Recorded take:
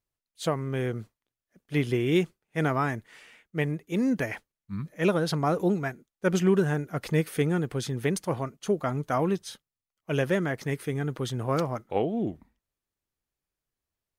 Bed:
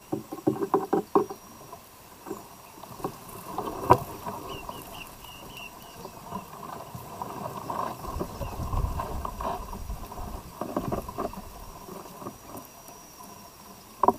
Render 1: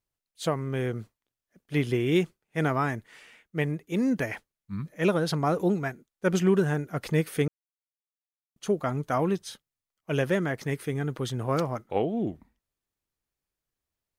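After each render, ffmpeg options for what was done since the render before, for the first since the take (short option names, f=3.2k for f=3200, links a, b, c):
-filter_complex "[0:a]asplit=3[a][b][c];[a]atrim=end=7.48,asetpts=PTS-STARTPTS,afade=t=out:st=7.476:d=0.004:c=hsin[d];[b]atrim=start=7.48:end=8.56,asetpts=PTS-STARTPTS,volume=0[e];[c]atrim=start=8.56,asetpts=PTS-STARTPTS,afade=t=in:d=0.004:c=hsin[f];[d][e][f]concat=n=3:v=0:a=1"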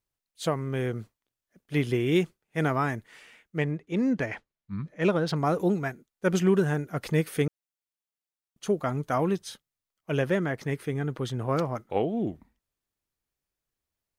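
-filter_complex "[0:a]asettb=1/sr,asplit=3[a][b][c];[a]atrim=end=3.584[d];[b]atrim=start=3.58:end=5.36,asetpts=PTS-STARTPTS,afade=t=in:d=0.004:c=qsin,afade=t=out:st=1.776:d=0.004:c=qsin,adynamicsmooth=sensitivity=3:basefreq=5k[e];[c]atrim=start=5.356[f];[d][e]acrossfade=d=0.004:c1=hsin:c2=qsin[g];[g][f]acrossfade=d=0.004:c1=qsin:c2=hsin,asettb=1/sr,asplit=3[h][i][j];[h]atrim=end=10.114[k];[i]atrim=start=10.11:end=11.75,asetpts=PTS-STARTPTS,afade=t=in:d=0.004:c=qsin,afade=t=out:st=1.636:d=0.004:c=qsin,highshelf=f=4.7k:g=-6[l];[j]atrim=start=11.746[m];[k][l]acrossfade=d=0.004:c1=hsin:c2=qsin[n];[n][m]acrossfade=d=0.004:c1=qsin:c2=hsin"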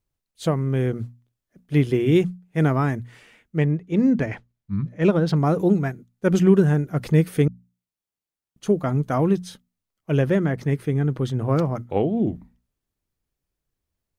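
-af "lowshelf=f=380:g=11,bandreject=f=60:t=h:w=6,bandreject=f=120:t=h:w=6,bandreject=f=180:t=h:w=6,bandreject=f=240:t=h:w=6"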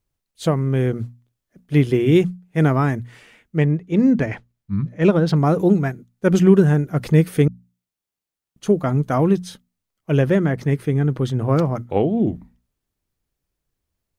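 -af "volume=3dB"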